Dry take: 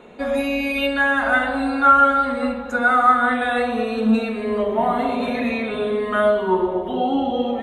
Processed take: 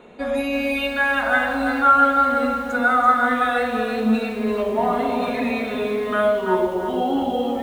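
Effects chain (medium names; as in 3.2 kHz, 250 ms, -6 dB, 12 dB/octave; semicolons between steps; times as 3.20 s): bit-crushed delay 337 ms, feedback 35%, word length 7-bit, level -7 dB; trim -1.5 dB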